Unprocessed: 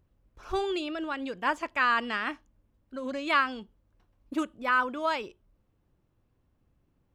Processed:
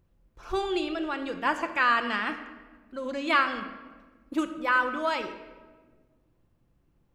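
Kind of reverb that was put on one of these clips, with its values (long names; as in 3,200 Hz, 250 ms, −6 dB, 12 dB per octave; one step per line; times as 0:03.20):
rectangular room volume 1,200 cubic metres, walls mixed, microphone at 0.78 metres
level +1 dB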